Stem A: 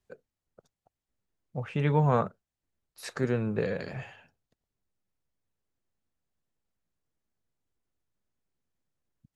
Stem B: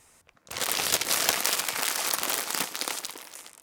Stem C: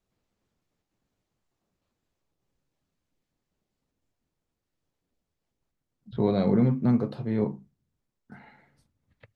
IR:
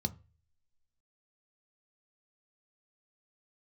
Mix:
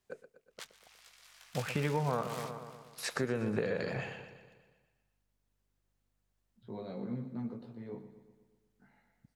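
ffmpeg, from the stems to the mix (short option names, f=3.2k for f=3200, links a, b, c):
-filter_complex "[0:a]lowshelf=f=150:g=-8.5,volume=3dB,asplit=3[a][b][c];[b]volume=-12.5dB[d];[1:a]highpass=1.2k,highshelf=f=6.4k:g=-10.5,flanger=delay=17.5:depth=4.3:speed=1.1,volume=-8dB,asplit=2[e][f];[f]volume=-20dB[g];[2:a]flanger=delay=16:depth=2.1:speed=1.2,highpass=130,aeval=exprs='val(0)+0.000355*(sin(2*PI*50*n/s)+sin(2*PI*2*50*n/s)/2+sin(2*PI*3*50*n/s)/3+sin(2*PI*4*50*n/s)/4+sin(2*PI*5*50*n/s)/5)':c=same,adelay=500,volume=-14dB,asplit=2[h][i];[i]volume=-12dB[j];[c]apad=whole_len=159889[k];[e][k]sidechaingate=range=-33dB:threshold=-56dB:ratio=16:detection=peak[l];[d][g][j]amix=inputs=3:normalize=0,aecho=0:1:121|242|363|484|605|726|847|968|1089:1|0.58|0.336|0.195|0.113|0.0656|0.0381|0.0221|0.0128[m];[a][l][h][m]amix=inputs=4:normalize=0,acompressor=threshold=-29dB:ratio=6"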